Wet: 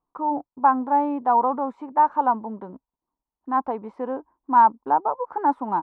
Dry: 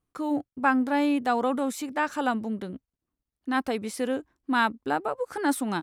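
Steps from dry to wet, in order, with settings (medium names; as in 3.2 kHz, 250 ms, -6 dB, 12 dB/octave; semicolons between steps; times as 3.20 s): resonant low-pass 950 Hz, resonance Q 7.2; peaking EQ 91 Hz -13.5 dB 0.87 oct; trim -2.5 dB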